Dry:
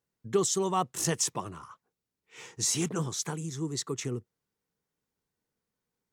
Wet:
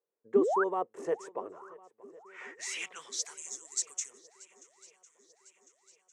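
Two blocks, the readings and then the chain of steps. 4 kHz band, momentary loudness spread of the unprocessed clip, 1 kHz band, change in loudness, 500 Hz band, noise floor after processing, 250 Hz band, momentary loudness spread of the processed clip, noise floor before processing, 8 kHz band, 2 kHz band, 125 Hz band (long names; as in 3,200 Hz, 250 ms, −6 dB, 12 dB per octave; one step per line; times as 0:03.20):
−7.5 dB, 14 LU, −1.0 dB, −3.0 dB, +1.0 dB, −82 dBFS, −4.5 dB, 22 LU, below −85 dBFS, −6.0 dB, +2.5 dB, below −20 dB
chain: high-pass filter 95 Hz
band-pass filter sweep 450 Hz → 6,800 Hz, 0:01.59–0:03.46
octave-band graphic EQ 125/250/500/1,000/2,000/4,000/8,000 Hz −11/−3/+5/+5/+9/−4/+8 dB
sound drawn into the spectrogram rise, 0:00.36–0:00.64, 210–1,700 Hz −29 dBFS
feedback echo with a long and a short gap by turns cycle 1,052 ms, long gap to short 1.5 to 1, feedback 52%, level −22 dB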